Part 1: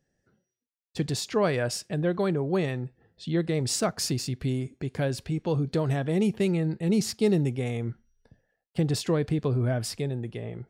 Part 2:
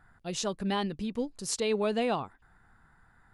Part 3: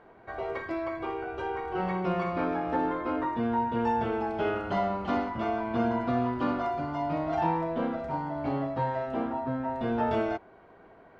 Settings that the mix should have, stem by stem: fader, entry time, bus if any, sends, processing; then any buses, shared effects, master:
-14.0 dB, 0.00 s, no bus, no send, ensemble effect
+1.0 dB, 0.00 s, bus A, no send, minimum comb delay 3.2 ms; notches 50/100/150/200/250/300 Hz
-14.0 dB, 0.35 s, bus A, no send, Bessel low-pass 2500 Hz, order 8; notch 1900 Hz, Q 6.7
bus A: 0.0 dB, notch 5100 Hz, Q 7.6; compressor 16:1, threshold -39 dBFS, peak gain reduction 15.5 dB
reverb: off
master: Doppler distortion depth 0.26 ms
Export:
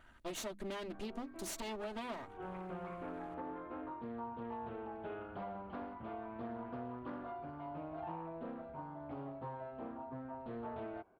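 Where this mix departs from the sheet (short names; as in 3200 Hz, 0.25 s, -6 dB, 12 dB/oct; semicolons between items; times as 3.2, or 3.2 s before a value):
stem 1: muted; stem 3: entry 0.35 s -> 0.65 s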